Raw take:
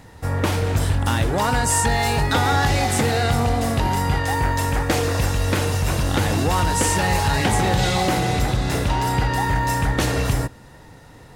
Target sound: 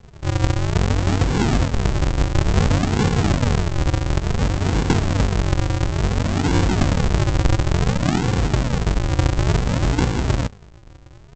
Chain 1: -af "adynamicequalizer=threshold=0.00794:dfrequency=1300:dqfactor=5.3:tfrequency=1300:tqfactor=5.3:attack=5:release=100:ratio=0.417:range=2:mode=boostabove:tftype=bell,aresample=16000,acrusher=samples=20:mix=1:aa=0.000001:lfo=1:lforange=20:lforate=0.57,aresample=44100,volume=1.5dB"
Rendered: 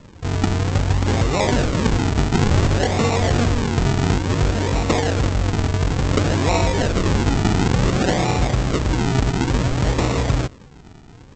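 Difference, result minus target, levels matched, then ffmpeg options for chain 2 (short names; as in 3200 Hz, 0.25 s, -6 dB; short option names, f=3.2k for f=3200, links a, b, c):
decimation with a swept rate: distortion -6 dB
-af "adynamicequalizer=threshold=0.00794:dfrequency=1300:dqfactor=5.3:tfrequency=1300:tqfactor=5.3:attack=5:release=100:ratio=0.417:range=2:mode=boostabove:tftype=bell,aresample=16000,acrusher=samples=50:mix=1:aa=0.000001:lfo=1:lforange=50:lforate=0.57,aresample=44100,volume=1.5dB"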